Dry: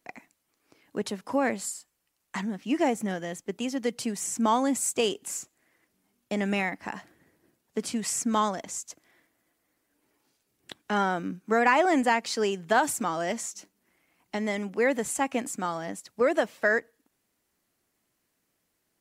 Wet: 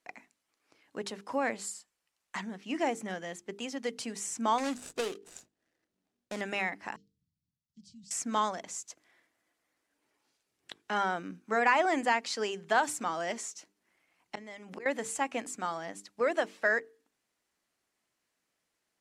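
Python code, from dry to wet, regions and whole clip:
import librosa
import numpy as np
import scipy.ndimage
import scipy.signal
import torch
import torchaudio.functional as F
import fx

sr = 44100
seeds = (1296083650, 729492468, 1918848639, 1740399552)

y = fx.chain(x, sr, fx.median_filter(points=41),
    fx.high_shelf(hz=2700.0, db=11.5), at=(4.58, 6.41))
y = fx.chain(y, sr, fx.cheby2_bandstop(low_hz=510.0, high_hz=1500.0, order=4, stop_db=70),
    fx.spacing_loss(db_at_10k=28), at=(6.96, 8.11))
y = fx.chain(y, sr, fx.gate_flip(shuts_db=-24.0, range_db=-25),
    fx.env_flatten(amount_pct=70), at=(14.35, 14.86))
y = scipy.signal.sosfilt(scipy.signal.bessel(2, 7800.0, 'lowpass', norm='mag', fs=sr, output='sos'), y)
y = fx.low_shelf(y, sr, hz=400.0, db=-8.5)
y = fx.hum_notches(y, sr, base_hz=50, count=9)
y = y * 10.0 ** (-2.0 / 20.0)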